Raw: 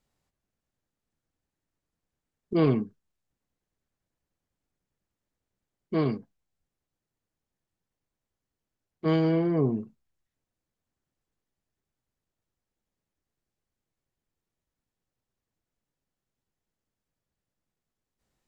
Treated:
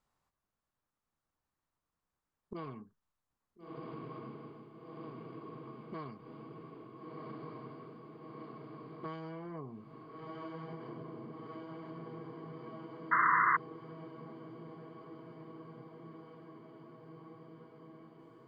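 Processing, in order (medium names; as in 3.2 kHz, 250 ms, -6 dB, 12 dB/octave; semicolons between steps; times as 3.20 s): echo that smears into a reverb 1407 ms, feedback 75%, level -11 dB; dynamic bell 340 Hz, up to -4 dB, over -36 dBFS, Q 0.74; compression 10:1, threshold -36 dBFS, peak gain reduction 16 dB; painted sound noise, 13.11–13.57 s, 960–2100 Hz -29 dBFS; peaking EQ 1.1 kHz +12 dB 1 oct; trim -6.5 dB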